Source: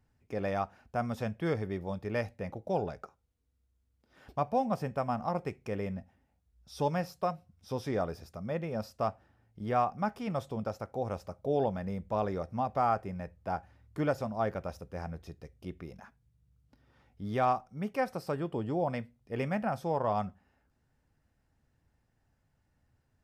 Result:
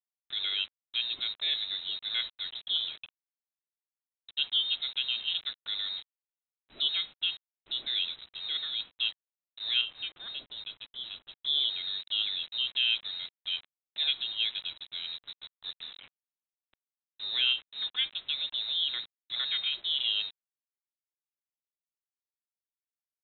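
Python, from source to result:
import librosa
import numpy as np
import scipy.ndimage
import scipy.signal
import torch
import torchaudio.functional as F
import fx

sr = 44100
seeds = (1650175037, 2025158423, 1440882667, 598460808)

y = fx.quant_dither(x, sr, seeds[0], bits=8, dither='none')
y = fx.freq_invert(y, sr, carrier_hz=3900)
y = fx.high_shelf(y, sr, hz=2200.0, db=-10.0, at=(9.81, 11.36))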